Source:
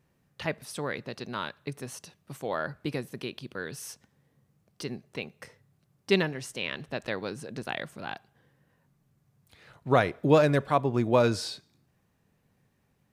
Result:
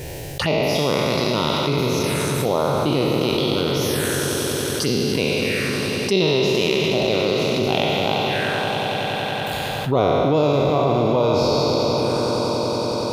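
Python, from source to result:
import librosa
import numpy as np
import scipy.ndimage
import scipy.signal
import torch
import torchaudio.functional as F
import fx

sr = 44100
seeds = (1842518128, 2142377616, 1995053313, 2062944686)

y = fx.spec_trails(x, sr, decay_s=2.65)
y = fx.rider(y, sr, range_db=3, speed_s=2.0)
y = fx.env_phaser(y, sr, low_hz=200.0, high_hz=1700.0, full_db=-26.5)
y = fx.echo_swell(y, sr, ms=93, loudest=5, wet_db=-16)
y = fx.env_flatten(y, sr, amount_pct=70)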